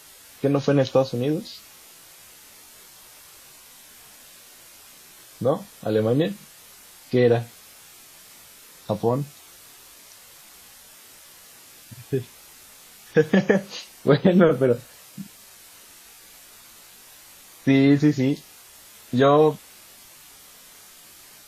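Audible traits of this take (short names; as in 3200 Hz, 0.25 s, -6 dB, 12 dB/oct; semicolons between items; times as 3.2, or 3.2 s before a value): a quantiser's noise floor 8-bit, dither triangular; WMA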